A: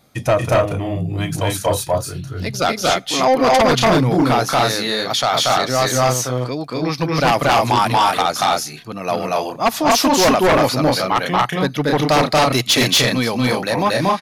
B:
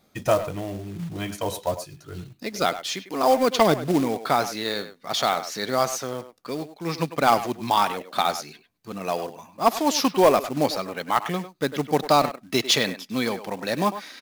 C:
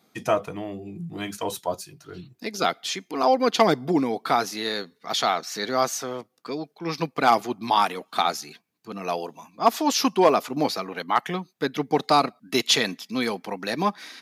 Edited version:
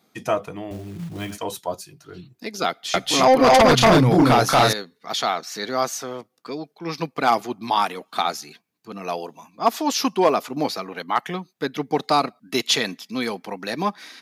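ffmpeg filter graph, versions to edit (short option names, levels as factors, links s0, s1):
-filter_complex "[2:a]asplit=3[s0][s1][s2];[s0]atrim=end=0.712[s3];[1:a]atrim=start=0.708:end=1.382[s4];[s1]atrim=start=1.378:end=2.942[s5];[0:a]atrim=start=2.938:end=4.732[s6];[s2]atrim=start=4.728[s7];[s3][s4]acrossfade=d=0.004:c1=hsin:c2=hsin[s8];[s8][s5]acrossfade=d=0.004:c1=hsin:c2=hsin[s9];[s9][s6]acrossfade=d=0.004:c1=hsin:c2=hsin[s10];[s10][s7]acrossfade=d=0.004:c1=hsin:c2=hsin"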